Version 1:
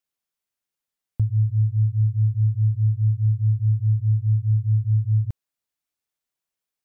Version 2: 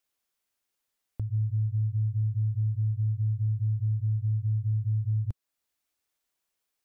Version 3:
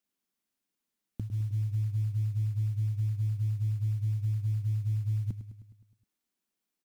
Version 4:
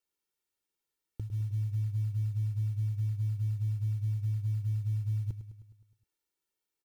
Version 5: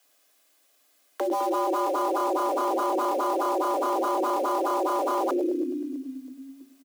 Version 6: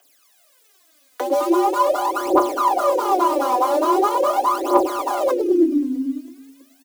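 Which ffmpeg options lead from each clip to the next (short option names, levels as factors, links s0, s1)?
-af "equalizer=f=150:w=2.6:g=-8,acompressor=threshold=0.0631:ratio=6,alimiter=level_in=1.41:limit=0.0631:level=0:latency=1:release=373,volume=0.708,volume=1.68"
-filter_complex "[0:a]firequalizer=gain_entry='entry(110,0);entry(190,14);entry(510,0)':delay=0.05:min_phase=1,acrusher=bits=8:mode=log:mix=0:aa=0.000001,asplit=2[s0][s1];[s1]aecho=0:1:104|208|312|416|520|624|728:0.251|0.151|0.0904|0.0543|0.0326|0.0195|0.0117[s2];[s0][s2]amix=inputs=2:normalize=0,volume=0.562"
-af "aecho=1:1:2.2:0.78,volume=0.631"
-filter_complex "[0:a]asplit=5[s0][s1][s2][s3][s4];[s1]adelay=324,afreqshift=-32,volume=0.106[s5];[s2]adelay=648,afreqshift=-64,volume=0.0562[s6];[s3]adelay=972,afreqshift=-96,volume=0.0299[s7];[s4]adelay=1296,afreqshift=-128,volume=0.0158[s8];[s0][s5][s6][s7][s8]amix=inputs=5:normalize=0,aeval=exprs='0.0596*sin(PI/2*7.08*val(0)/0.0596)':c=same,afreqshift=250,volume=1.26"
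-af "aphaser=in_gain=1:out_gain=1:delay=4.1:decay=0.79:speed=0.42:type=triangular,volume=1.41"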